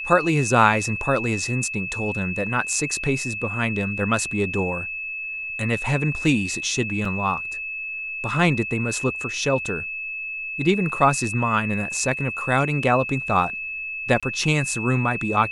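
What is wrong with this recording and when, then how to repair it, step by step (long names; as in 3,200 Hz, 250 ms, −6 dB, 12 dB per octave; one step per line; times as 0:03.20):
whistle 2,600 Hz −28 dBFS
0:07.05: drop-out 4 ms
0:14.20–0:14.23: drop-out 26 ms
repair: notch filter 2,600 Hz, Q 30
repair the gap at 0:07.05, 4 ms
repair the gap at 0:14.20, 26 ms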